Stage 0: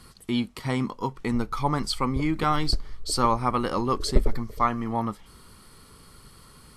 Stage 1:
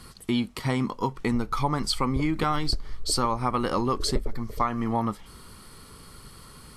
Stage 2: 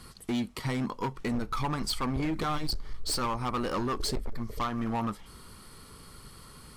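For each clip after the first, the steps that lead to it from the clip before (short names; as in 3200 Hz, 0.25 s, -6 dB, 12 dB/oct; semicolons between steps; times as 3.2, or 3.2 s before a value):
compressor 10:1, threshold -24 dBFS, peak gain reduction 14 dB; gain +3.5 dB
hard clip -23.5 dBFS, distortion -10 dB; gain -2.5 dB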